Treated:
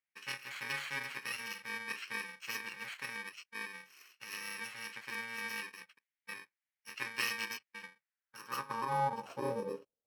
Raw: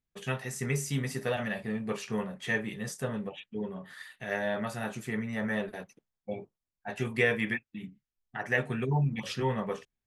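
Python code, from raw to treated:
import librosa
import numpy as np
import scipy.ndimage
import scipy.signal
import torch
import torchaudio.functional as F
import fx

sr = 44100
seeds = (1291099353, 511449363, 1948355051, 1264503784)

y = fx.bit_reversed(x, sr, seeds[0], block=64)
y = fx.filter_sweep_bandpass(y, sr, from_hz=2000.0, to_hz=500.0, start_s=7.97, end_s=9.76, q=3.6)
y = y * librosa.db_to_amplitude(10.5)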